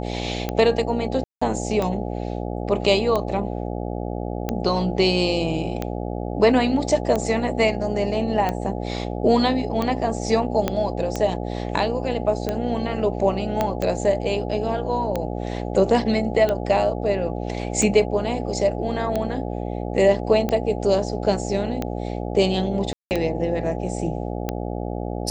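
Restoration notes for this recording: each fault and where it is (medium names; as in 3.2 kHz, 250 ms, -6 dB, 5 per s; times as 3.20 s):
buzz 60 Hz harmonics 14 -28 dBFS
tick 45 rpm -11 dBFS
1.24–1.42 s: dropout 175 ms
10.68 s: pop -8 dBFS
13.61 s: pop -8 dBFS
22.93–23.11 s: dropout 179 ms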